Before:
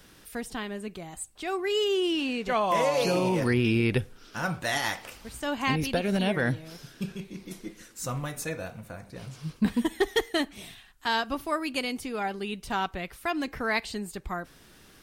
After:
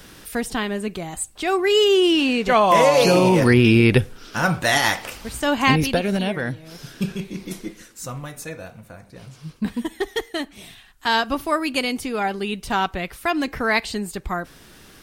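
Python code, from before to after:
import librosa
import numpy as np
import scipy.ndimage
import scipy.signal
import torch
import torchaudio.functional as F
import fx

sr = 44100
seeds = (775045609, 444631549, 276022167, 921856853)

y = fx.gain(x, sr, db=fx.line((5.7, 10.0), (6.55, -1.0), (6.88, 9.0), (7.55, 9.0), (8.13, 0.0), (10.41, 0.0), (11.15, 7.5)))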